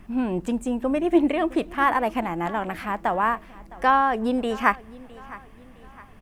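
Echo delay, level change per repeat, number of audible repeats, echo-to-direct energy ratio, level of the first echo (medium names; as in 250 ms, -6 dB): 661 ms, -7.0 dB, 3, -19.0 dB, -20.0 dB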